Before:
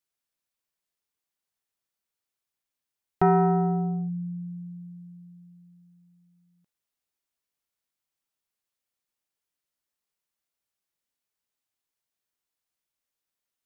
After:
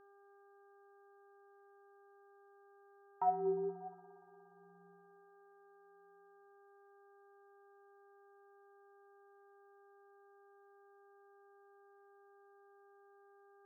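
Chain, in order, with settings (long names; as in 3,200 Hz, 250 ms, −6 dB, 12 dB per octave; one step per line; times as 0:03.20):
LFO wah 0.77 Hz 360–2,000 Hz, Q 9.5
hum with harmonics 400 Hz, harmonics 4, −61 dBFS −5 dB per octave
spring reverb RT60 3.3 s, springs 58 ms, chirp 55 ms, DRR 16 dB
level −3 dB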